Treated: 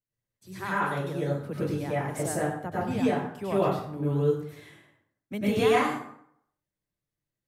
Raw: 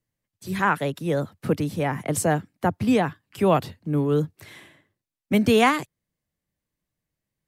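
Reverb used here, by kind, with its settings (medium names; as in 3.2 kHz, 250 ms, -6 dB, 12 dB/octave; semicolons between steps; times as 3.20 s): plate-style reverb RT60 0.69 s, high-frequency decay 0.65×, pre-delay 85 ms, DRR -8.5 dB; trim -14.5 dB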